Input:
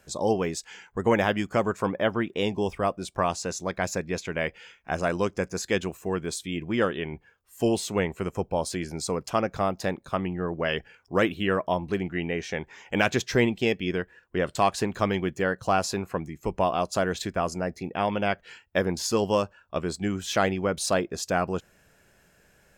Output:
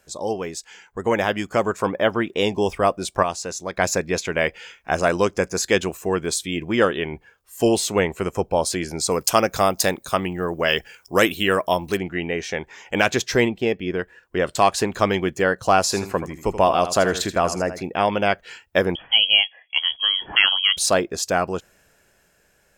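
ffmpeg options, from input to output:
ffmpeg -i in.wav -filter_complex "[0:a]asettb=1/sr,asplit=3[link_01][link_02][link_03];[link_01]atrim=end=9.114[link_04];[link_02]atrim=start=9.11:end=11.97,asetpts=PTS-STARTPTS,afade=type=in:duration=0.004:curve=qsin,afade=type=out:start_time=2.856:duration=0.004:curve=qsin,aemphasis=mode=production:type=75kf[link_05];[link_03]atrim=start=11.966[link_06];[link_04][link_05]acrossfade=duration=0.004:curve1=hsin:curve2=qsin[link_07];[link_07][link_06]acrossfade=duration=0.004:curve1=qsin:curve2=hsin,asettb=1/sr,asplit=3[link_08][link_09][link_10];[link_08]atrim=end=13.484[link_11];[link_09]atrim=start=13.48:end=13.99,asetpts=PTS-STARTPTS,afade=type=in:duration=0.004:curve=qsin,afade=type=out:start_time=0.506:duration=0.004:curve=qsin,equalizer=frequency=8000:width=0.34:gain=-12[link_12];[link_10]atrim=start=13.986[link_13];[link_11][link_12]acrossfade=duration=0.004:curve1=hsin:curve2=qsin[link_14];[link_14][link_13]acrossfade=duration=0.004:curve1=qsin:curve2=hsin,asettb=1/sr,asplit=3[link_15][link_16][link_17];[link_15]atrim=end=15.834[link_18];[link_16]atrim=start=15.83:end=17.83,asetpts=PTS-STARTPTS,afade=type=in:duration=0.004:curve=qsin,afade=type=out:start_time=1.996:duration=0.004:curve=qsin,aecho=1:1:80|160|240:0.266|0.0585|0.0129,atrim=end_sample=88200[link_19];[link_17]atrim=start=17.826[link_20];[link_18][link_19]acrossfade=duration=0.004:curve1=hsin:curve2=qsin[link_21];[link_21][link_20]acrossfade=duration=0.004:curve1=qsin:curve2=hsin,asettb=1/sr,asplit=3[link_22][link_23][link_24];[link_22]atrim=end=18.954[link_25];[link_23]atrim=start=18.95:end=20.77,asetpts=PTS-STARTPTS,afade=type=in:duration=0.004:curve=qsin,afade=type=out:start_time=1.816:duration=0.004:curve=qsin,lowpass=frequency=2900:width_type=q:width=0.5098,lowpass=frequency=2900:width_type=q:width=0.6013,lowpass=frequency=2900:width_type=q:width=0.9,lowpass=frequency=2900:width_type=q:width=2.563,afreqshift=-3400[link_26];[link_24]atrim=start=20.766[link_27];[link_25][link_26]acrossfade=duration=0.004:curve1=hsin:curve2=qsin[link_28];[link_28][link_27]acrossfade=duration=0.004:curve1=qsin:curve2=hsin,asplit=3[link_29][link_30][link_31];[link_29]atrim=end=3.232[link_32];[link_30]atrim=start=3.228:end=3.772,asetpts=PTS-STARTPTS,volume=-6.5dB[link_33];[link_31]atrim=start=3.768[link_34];[link_32][link_33]acrossfade=duration=0.004:curve1=hsin:curve2=hsin[link_35];[link_35][link_34]acrossfade=duration=0.004:curve1=hsin:curve2=hsin,lowshelf=frequency=160:gain=10,dynaudnorm=framelen=120:gausssize=21:maxgain=11.5dB,bass=frequency=250:gain=-11,treble=frequency=4000:gain=3,volume=-1dB" out.wav

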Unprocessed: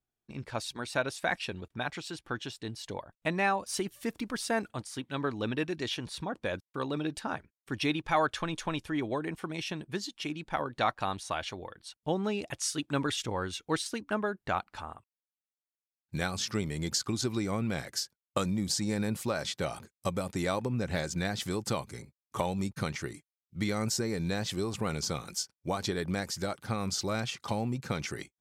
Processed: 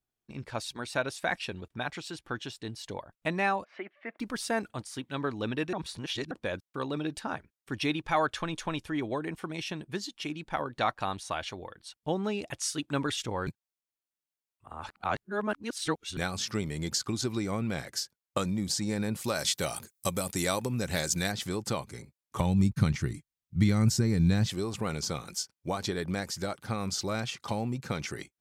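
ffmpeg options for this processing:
ffmpeg -i in.wav -filter_complex "[0:a]asplit=3[link_01][link_02][link_03];[link_01]afade=type=out:start_time=3.63:duration=0.02[link_04];[link_02]highpass=frequency=290:width=0.5412,highpass=frequency=290:width=1.3066,equalizer=frequency=300:width_type=q:width=4:gain=-10,equalizer=frequency=440:width_type=q:width=4:gain=-9,equalizer=frequency=630:width_type=q:width=4:gain=6,equalizer=frequency=950:width_type=q:width=4:gain=-5,equalizer=frequency=2100:width_type=q:width=4:gain=7,lowpass=frequency=2200:width=0.5412,lowpass=frequency=2200:width=1.3066,afade=type=in:start_time=3.63:duration=0.02,afade=type=out:start_time=4.19:duration=0.02[link_05];[link_03]afade=type=in:start_time=4.19:duration=0.02[link_06];[link_04][link_05][link_06]amix=inputs=3:normalize=0,asettb=1/sr,asplit=3[link_07][link_08][link_09];[link_07]atrim=end=19.244[link_10];[link_08]atrim=start=19.24:end=21.32,asetpts=PTS-STARTPTS,afade=type=in:duration=0.004:curve=qsin,afade=type=out:start_time=2.076:duration=0.004:curve=qsin,aemphasis=mode=production:type=75kf[link_11];[link_09]atrim=start=21.316[link_12];[link_10][link_11]acrossfade=duration=0.004:curve1=hsin:curve2=qsin[link_13];[link_13][link_12]acrossfade=duration=0.004:curve1=qsin:curve2=hsin,asplit=3[link_14][link_15][link_16];[link_14]afade=type=out:start_time=22.39:duration=0.02[link_17];[link_15]asubboost=boost=4.5:cutoff=220,afade=type=in:start_time=22.39:duration=0.02,afade=type=out:start_time=24.48:duration=0.02[link_18];[link_16]afade=type=in:start_time=24.48:duration=0.02[link_19];[link_17][link_18][link_19]amix=inputs=3:normalize=0,asplit=5[link_20][link_21][link_22][link_23][link_24];[link_20]atrim=end=5.732[link_25];[link_21]atrim=start=5.728:end=6.312,asetpts=PTS-STARTPTS,areverse[link_26];[link_22]atrim=start=6.308:end=13.472[link_27];[link_23]atrim=start=13.468:end=16.172,asetpts=PTS-STARTPTS,areverse[link_28];[link_24]atrim=start=16.168[link_29];[link_25][link_26]acrossfade=duration=0.004:curve1=hsin:curve2=hsin[link_30];[link_30][link_27]acrossfade=duration=0.004:curve1=hsin:curve2=hsin[link_31];[link_31][link_28]acrossfade=duration=0.004:curve1=hsin:curve2=hsin[link_32];[link_32][link_29]acrossfade=duration=0.004:curve1=hsin:curve2=hsin" out.wav

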